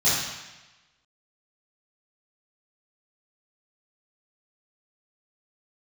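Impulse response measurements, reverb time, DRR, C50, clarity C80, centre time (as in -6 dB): 1.1 s, -12.5 dB, -0.5 dB, 2.5 dB, 83 ms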